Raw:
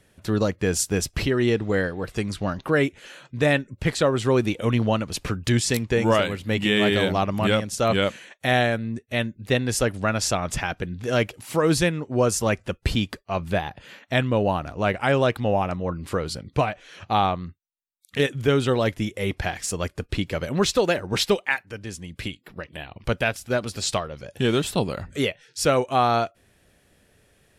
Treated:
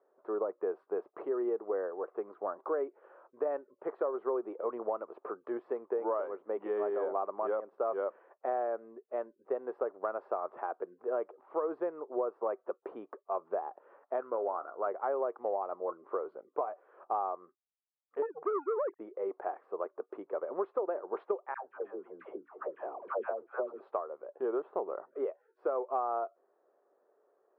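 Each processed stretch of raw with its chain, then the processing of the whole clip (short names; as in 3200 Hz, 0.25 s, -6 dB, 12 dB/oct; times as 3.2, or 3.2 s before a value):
14.2–14.87 bell 1400 Hz +11.5 dB 0.33 oct + resonator 58 Hz, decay 0.22 s, mix 50%
18.22–18.99 sine-wave speech + dynamic EQ 1200 Hz, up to +5 dB, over -33 dBFS, Q 0.8 + core saturation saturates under 2100 Hz
21.54–23.8 dispersion lows, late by 0.118 s, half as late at 650 Hz + frequency-shifting echo 0.249 s, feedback 39%, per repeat -110 Hz, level -24 dB + three-band squash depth 70%
whole clip: elliptic band-pass 380–1200 Hz, stop band 70 dB; compressor, threshold -25 dBFS; gain -4 dB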